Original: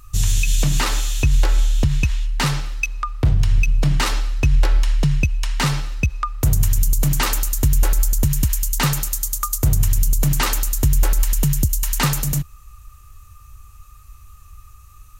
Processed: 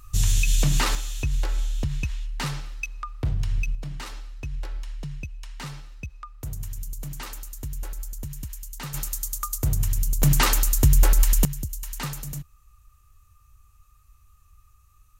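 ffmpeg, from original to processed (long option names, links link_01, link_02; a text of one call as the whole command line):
ffmpeg -i in.wav -af "asetnsamples=nb_out_samples=441:pad=0,asendcmd='0.95 volume volume -9.5dB;3.75 volume volume -17dB;8.94 volume volume -7dB;10.22 volume volume -0.5dB;11.45 volume volume -13dB',volume=-3dB" out.wav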